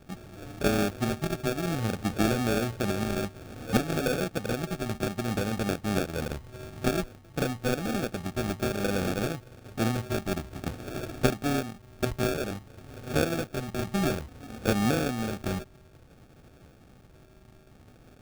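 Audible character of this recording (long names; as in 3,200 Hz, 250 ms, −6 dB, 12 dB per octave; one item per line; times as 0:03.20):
a buzz of ramps at a fixed pitch in blocks of 32 samples
phaser sweep stages 6, 0.56 Hz, lowest notch 580–2,100 Hz
aliases and images of a low sample rate 1,000 Hz, jitter 0%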